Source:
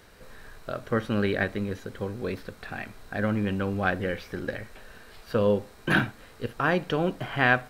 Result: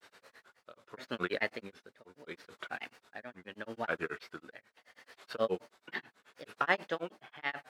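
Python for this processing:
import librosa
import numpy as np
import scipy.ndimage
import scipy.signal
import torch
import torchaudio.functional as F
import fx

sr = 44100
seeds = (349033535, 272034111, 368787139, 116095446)

y = x * (1.0 - 0.81 / 2.0 + 0.81 / 2.0 * np.cos(2.0 * np.pi * 0.75 * (np.arange(len(x)) / sr)))
y = fx.granulator(y, sr, seeds[0], grain_ms=107.0, per_s=9.3, spray_ms=14.0, spread_st=3)
y = fx.weighting(y, sr, curve='A')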